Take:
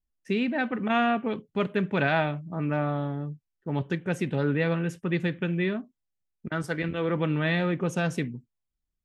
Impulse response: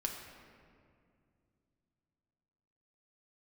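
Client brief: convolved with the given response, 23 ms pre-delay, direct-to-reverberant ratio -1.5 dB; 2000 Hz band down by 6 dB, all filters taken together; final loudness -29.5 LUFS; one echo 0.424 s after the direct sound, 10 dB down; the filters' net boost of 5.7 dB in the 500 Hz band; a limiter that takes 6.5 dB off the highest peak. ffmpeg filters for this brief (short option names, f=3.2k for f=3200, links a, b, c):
-filter_complex "[0:a]equalizer=f=500:t=o:g=7.5,equalizer=f=2k:t=o:g=-9,alimiter=limit=-17.5dB:level=0:latency=1,aecho=1:1:424:0.316,asplit=2[a][b];[1:a]atrim=start_sample=2205,adelay=23[c];[b][c]afir=irnorm=-1:irlink=0,volume=0dB[d];[a][d]amix=inputs=2:normalize=0,volume=-5.5dB"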